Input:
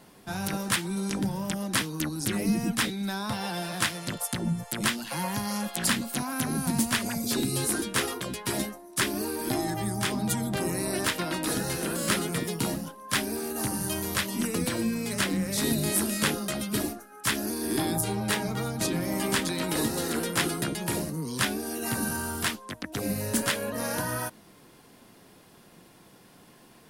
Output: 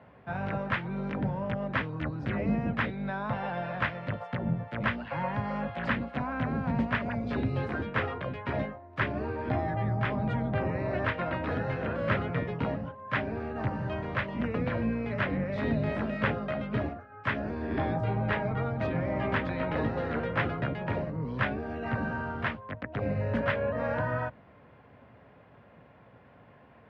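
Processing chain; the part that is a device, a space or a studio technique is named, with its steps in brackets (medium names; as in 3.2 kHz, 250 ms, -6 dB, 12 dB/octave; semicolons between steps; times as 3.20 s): sub-octave bass pedal (octave divider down 2 oct, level +1 dB; cabinet simulation 87–2300 Hz, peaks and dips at 110 Hz +6 dB, 190 Hz -5 dB, 340 Hz -10 dB, 580 Hz +6 dB)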